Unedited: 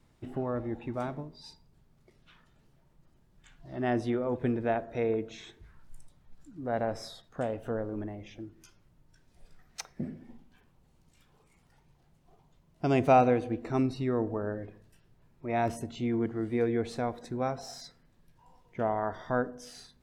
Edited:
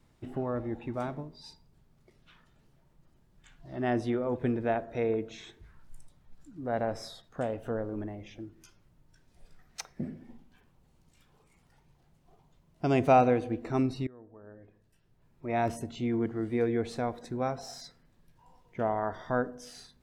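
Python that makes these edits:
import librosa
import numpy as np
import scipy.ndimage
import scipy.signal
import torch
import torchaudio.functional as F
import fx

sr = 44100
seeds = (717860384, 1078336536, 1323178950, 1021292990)

y = fx.edit(x, sr, fx.fade_in_from(start_s=14.07, length_s=1.39, curve='qua', floor_db=-23.5), tone=tone)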